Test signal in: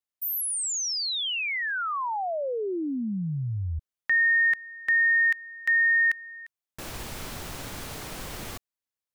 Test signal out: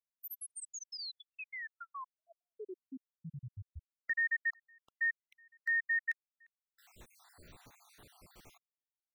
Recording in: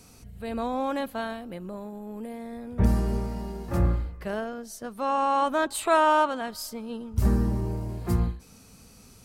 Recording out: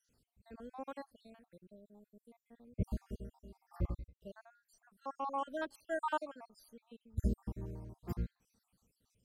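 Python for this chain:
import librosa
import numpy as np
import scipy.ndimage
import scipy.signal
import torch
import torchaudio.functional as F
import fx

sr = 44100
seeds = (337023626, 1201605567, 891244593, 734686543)

y = fx.spec_dropout(x, sr, seeds[0], share_pct=61)
y = fx.upward_expand(y, sr, threshold_db=-43.0, expansion=1.5)
y = y * librosa.db_to_amplitude(-9.0)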